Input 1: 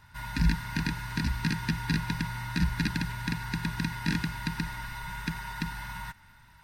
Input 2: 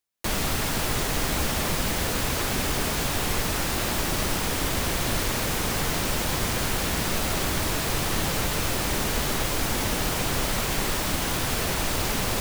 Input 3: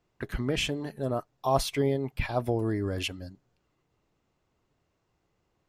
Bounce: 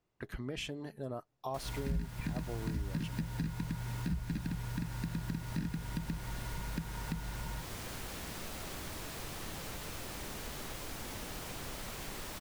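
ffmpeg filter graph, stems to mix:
-filter_complex "[0:a]tiltshelf=f=660:g=7.5,adelay=1500,volume=-2dB[a];[1:a]adelay=1300,volume=-16.5dB[b];[2:a]volume=-7dB[c];[a][b][c]amix=inputs=3:normalize=0,acompressor=threshold=-37dB:ratio=3"

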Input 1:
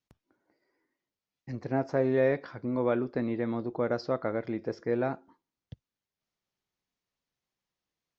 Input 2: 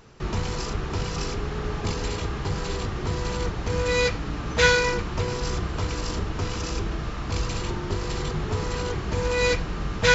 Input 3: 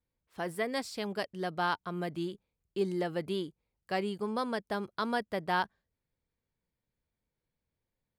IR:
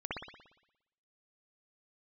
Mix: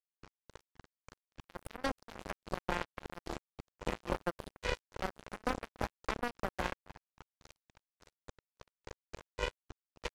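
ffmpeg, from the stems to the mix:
-filter_complex "[0:a]aeval=exprs='(tanh(14.1*val(0)+0.35)-tanh(0.35))/14.1':c=same,volume=-17dB[a];[1:a]lowshelf=f=110:t=q:w=3:g=10.5,aecho=1:1:6.2:0.79,tremolo=f=3.6:d=0.89,volume=-14.5dB[b];[2:a]equalizer=f=2.4k:t=o:w=1.8:g=-13.5,adelay=1100,volume=2.5dB,asplit=2[c][d];[d]volume=-15.5dB,aecho=0:1:274|548|822|1096|1370|1644|1918:1|0.5|0.25|0.125|0.0625|0.0312|0.0156[e];[a][b][c][e]amix=inputs=4:normalize=0,aecho=1:1:3.7:0.85,acrossover=split=400|2400|4800[f][g][h][i];[f]acompressor=threshold=-32dB:ratio=4[j];[g]acompressor=threshold=-31dB:ratio=4[k];[h]acompressor=threshold=-58dB:ratio=4[l];[i]acompressor=threshold=-55dB:ratio=4[m];[j][k][l][m]amix=inputs=4:normalize=0,acrusher=bits=3:mix=0:aa=0.5"

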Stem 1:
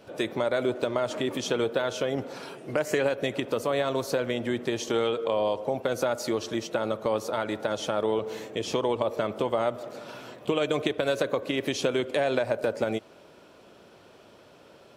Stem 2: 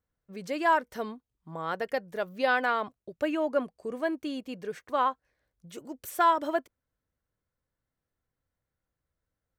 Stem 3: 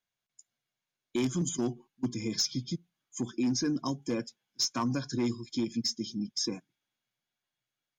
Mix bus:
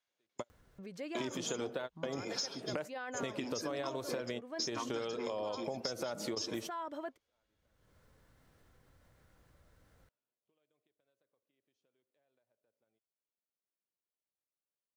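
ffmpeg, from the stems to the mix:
-filter_complex "[0:a]volume=-3.5dB[a];[1:a]highshelf=f=7.4k:g=-7.5,acompressor=mode=upward:threshold=-32dB:ratio=2.5,alimiter=limit=-22dB:level=0:latency=1:release=15,adelay=500,volume=-10dB[b];[2:a]acrossover=split=370 7900:gain=0.126 1 0.224[c][d][e];[c][d][e]amix=inputs=3:normalize=0,volume=1dB,asplit=2[f][g];[g]apad=whole_len=659792[h];[a][h]sidechaingate=range=-52dB:threshold=-55dB:ratio=16:detection=peak[i];[i][b][f]amix=inputs=3:normalize=0,acompressor=threshold=-35dB:ratio=6"

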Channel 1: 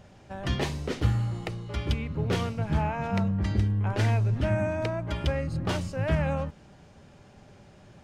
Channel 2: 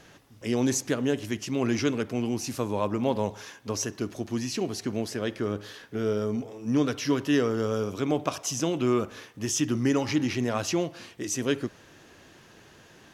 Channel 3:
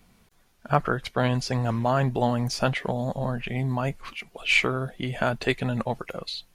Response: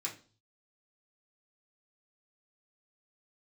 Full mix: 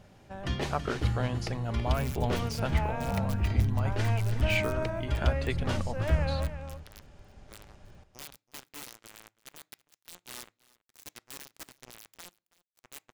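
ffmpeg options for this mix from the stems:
-filter_complex "[0:a]asubboost=boost=6:cutoff=59,volume=-3.5dB,asplit=2[a][b];[b]volume=-10.5dB[c];[1:a]acrusher=bits=2:mix=0:aa=0.5,aeval=exprs='(mod(21.1*val(0)+1,2)-1)/21.1':c=same,adelay=1450,volume=-6.5dB,asplit=3[d][e][f];[e]volume=-19.5dB[g];[f]volume=-21.5dB[h];[2:a]volume=-9.5dB[i];[3:a]atrim=start_sample=2205[j];[g][j]afir=irnorm=-1:irlink=0[k];[c][h]amix=inputs=2:normalize=0,aecho=0:1:327:1[l];[a][d][i][k][l]amix=inputs=5:normalize=0"

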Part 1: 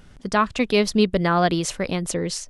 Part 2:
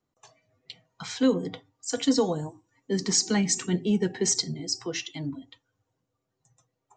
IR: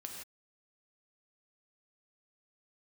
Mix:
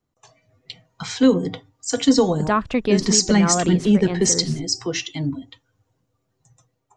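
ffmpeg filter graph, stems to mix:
-filter_complex "[0:a]lowpass=f=1.6k:p=1,alimiter=limit=-12.5dB:level=0:latency=1:release=37,adelay=2150,volume=-2.5dB[a];[1:a]lowshelf=f=120:g=8.5,volume=1dB,asplit=2[b][c];[c]apad=whole_len=204917[d];[a][d]sidechaincompress=threshold=-23dB:ratio=8:attack=9.5:release=219[e];[e][b]amix=inputs=2:normalize=0,dynaudnorm=f=130:g=5:m=5.5dB"

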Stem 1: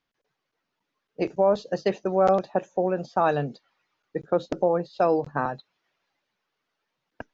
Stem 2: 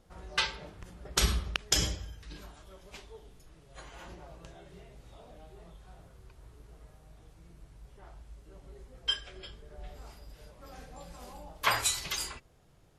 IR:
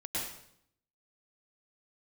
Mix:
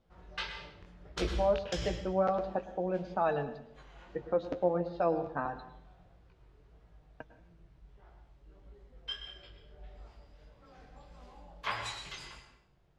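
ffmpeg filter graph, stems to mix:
-filter_complex "[0:a]bandreject=f=390:w=12,flanger=delay=4.6:depth=7.3:regen=46:speed=0.3:shape=sinusoidal,volume=-5dB,asplit=3[a][b][c];[b]volume=-14.5dB[d];[1:a]flanger=delay=17:depth=6.3:speed=1.6,volume=-6.5dB,asplit=2[e][f];[f]volume=-8dB[g];[c]apad=whole_len=572808[h];[e][h]sidechaincompress=threshold=-35dB:ratio=8:attack=37:release=147[i];[2:a]atrim=start_sample=2205[j];[d][g]amix=inputs=2:normalize=0[k];[k][j]afir=irnorm=-1:irlink=0[l];[a][i][l]amix=inputs=3:normalize=0,lowpass=4.1k"

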